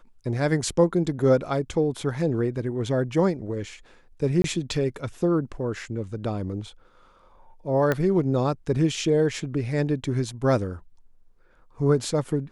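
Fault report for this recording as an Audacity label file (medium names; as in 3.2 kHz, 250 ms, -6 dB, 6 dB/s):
4.420000	4.440000	dropout 22 ms
7.920000	7.920000	pop -11 dBFS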